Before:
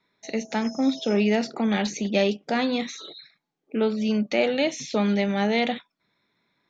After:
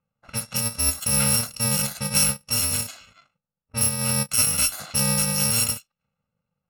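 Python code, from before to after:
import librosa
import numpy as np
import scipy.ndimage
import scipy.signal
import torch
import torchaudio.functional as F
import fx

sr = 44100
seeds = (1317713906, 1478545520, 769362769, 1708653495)

y = fx.bit_reversed(x, sr, seeds[0], block=128)
y = fx.env_lowpass(y, sr, base_hz=1000.0, full_db=-22.5)
y = y * librosa.db_to_amplitude(3.0)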